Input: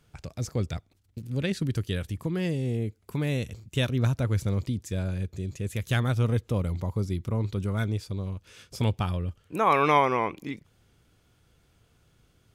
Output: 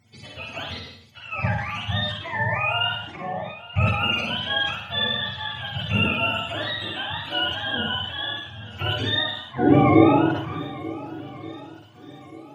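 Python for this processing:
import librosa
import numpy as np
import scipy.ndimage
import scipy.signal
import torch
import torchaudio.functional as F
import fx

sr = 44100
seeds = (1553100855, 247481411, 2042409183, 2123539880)

y = fx.octave_mirror(x, sr, pivot_hz=570.0)
y = fx.ellip_bandpass(y, sr, low_hz=170.0, high_hz=880.0, order=3, stop_db=40, at=(3.16, 3.76))
y = fx.hpss(y, sr, part='harmonic', gain_db=6)
y = fx.echo_swing(y, sr, ms=1479, ratio=1.5, feedback_pct=32, wet_db=-17.5)
y = fx.rev_schroeder(y, sr, rt60_s=0.51, comb_ms=38, drr_db=0.0)
y = fx.sustainer(y, sr, db_per_s=67.0)
y = F.gain(torch.from_numpy(y), -1.0).numpy()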